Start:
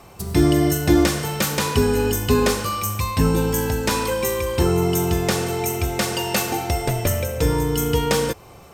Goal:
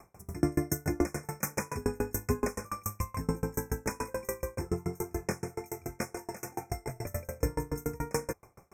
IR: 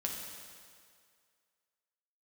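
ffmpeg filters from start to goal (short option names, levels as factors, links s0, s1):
-filter_complex "[0:a]asettb=1/sr,asplit=3[s0][s1][s2];[s0]atrim=end=4.554[s3];[s1]atrim=start=4.55:end=6.96,asetpts=PTS-STARTPTS,afade=t=in:d=0.004:c=qsin,afade=t=out:st=2.406:d=0.004:c=qsin,flanger=delay=19.5:depth=4.3:speed=1.8[s4];[s2]atrim=start=6.956[s5];[s3][s4]acrossfade=d=0.004:c1=hsin:c2=qsin[s6];[s6][s5]acrossfade=d=0.004:c1=qsin:c2=hsin,asuperstop=centerf=3600:order=20:qfactor=1.3,aeval=exprs='val(0)*pow(10,-32*if(lt(mod(7*n/s,1),2*abs(7)/1000),1-mod(7*n/s,1)/(2*abs(7)/1000),(mod(7*n/s,1)-2*abs(7)/1000)/(1-2*abs(7)/1000))/20)':c=same,volume=0.562"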